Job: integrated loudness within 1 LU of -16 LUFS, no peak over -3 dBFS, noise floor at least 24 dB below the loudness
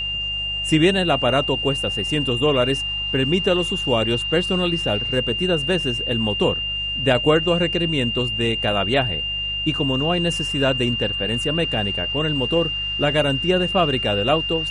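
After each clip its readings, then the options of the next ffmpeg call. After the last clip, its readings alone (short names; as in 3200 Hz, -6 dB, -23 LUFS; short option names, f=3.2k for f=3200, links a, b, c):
hum 50 Hz; harmonics up to 150 Hz; hum level -33 dBFS; steady tone 2800 Hz; tone level -23 dBFS; loudness -20.0 LUFS; peak -4.5 dBFS; loudness target -16.0 LUFS
-> -af "bandreject=f=50:t=h:w=4,bandreject=f=100:t=h:w=4,bandreject=f=150:t=h:w=4"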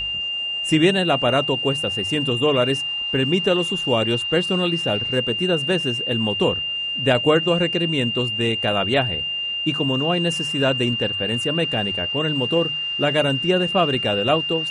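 hum none; steady tone 2800 Hz; tone level -23 dBFS
-> -af "bandreject=f=2.8k:w=30"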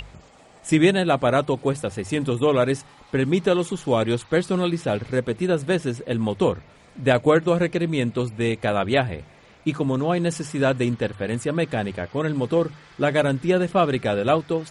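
steady tone none; loudness -22.5 LUFS; peak -5.5 dBFS; loudness target -16.0 LUFS
-> -af "volume=6.5dB,alimiter=limit=-3dB:level=0:latency=1"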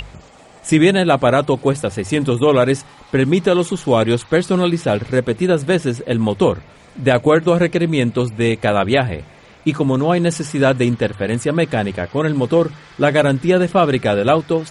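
loudness -16.5 LUFS; peak -3.0 dBFS; noise floor -44 dBFS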